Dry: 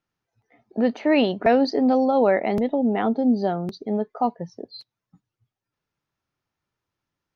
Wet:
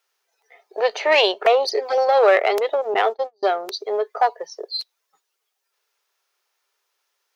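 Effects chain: one diode to ground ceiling -13 dBFS; elliptic high-pass 400 Hz, stop band 40 dB; 2.94–3.43 gate -29 dBFS, range -37 dB; high shelf 2400 Hz +11.5 dB; 1.34–1.98 envelope flanger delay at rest 3.6 ms, full sweep at -19 dBFS; gain +6.5 dB

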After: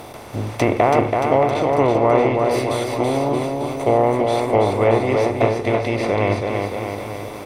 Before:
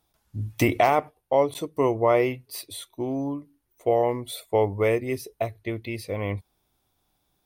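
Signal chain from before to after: per-bin compression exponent 0.4; treble ducked by the level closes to 1900 Hz, closed at -12 dBFS; bouncing-ball echo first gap 0.33 s, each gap 0.9×, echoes 5

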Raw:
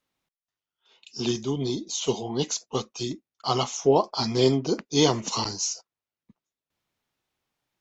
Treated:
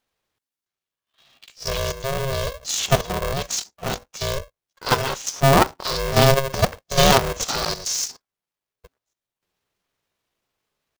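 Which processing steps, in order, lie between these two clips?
level quantiser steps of 11 dB; wow and flutter 24 cents; tempo 0.71×; polarity switched at an audio rate 270 Hz; gain +9 dB

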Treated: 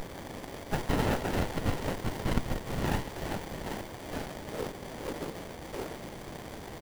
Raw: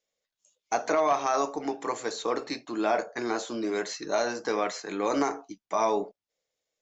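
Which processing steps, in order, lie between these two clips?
Wiener smoothing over 15 samples; bell 240 Hz +13 dB 0.6 oct; ring modulator 1600 Hz; HPF 140 Hz 12 dB/oct; high shelf 4200 Hz -10 dB; feedback echo 0.793 s, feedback 18%, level -11 dB; low-pass sweep 1300 Hz -> 280 Hz, 2.41–6.3; requantised 6-bit, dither triangular; whisperiser; running maximum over 33 samples

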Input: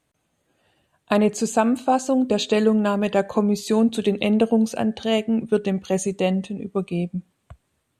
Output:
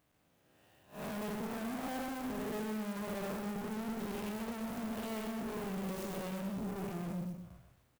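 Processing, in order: time blur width 0.193 s; 1.34–3.99 LPF 1800 Hz 24 dB/oct; tube stage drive 41 dB, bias 0.4; feedback echo 0.125 s, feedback 35%, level -6 dB; clock jitter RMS 0.04 ms; gain +1.5 dB

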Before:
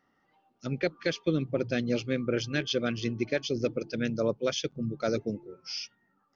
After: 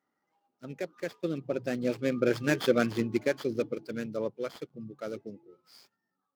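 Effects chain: median filter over 15 samples; Doppler pass-by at 2.66, 10 m/s, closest 4.9 m; HPF 240 Hz 6 dB/oct; gain +7 dB

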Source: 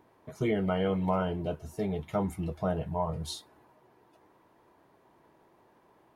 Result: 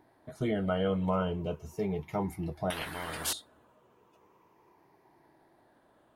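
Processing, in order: moving spectral ripple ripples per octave 0.78, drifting -0.37 Hz, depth 7 dB; 2.7–3.33 spectral compressor 10:1; gain -2 dB

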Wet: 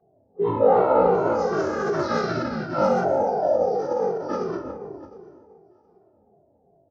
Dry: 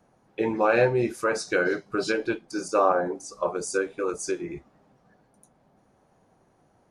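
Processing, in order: spectral trails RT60 2.49 s; dynamic EQ 3600 Hz, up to +5 dB, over -44 dBFS, Q 1.4; spectral gain 1.27–3.05, 460–980 Hz -24 dB; echoes that change speed 0.285 s, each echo +1 st, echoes 3, each echo -6 dB; low-pass opened by the level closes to 900 Hz, open at -16 dBFS; HPF 170 Hz 12 dB/oct; resonant high shelf 1500 Hz -14 dB, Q 3; feedback echo 0.705 s, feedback 25%, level -21 dB; formant-preserving pitch shift -11.5 st; endless flanger 2.1 ms -2.7 Hz; gain +1.5 dB

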